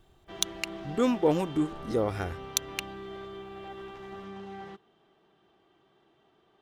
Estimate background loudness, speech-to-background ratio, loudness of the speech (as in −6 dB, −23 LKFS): −43.0 LKFS, 13.0 dB, −30.0 LKFS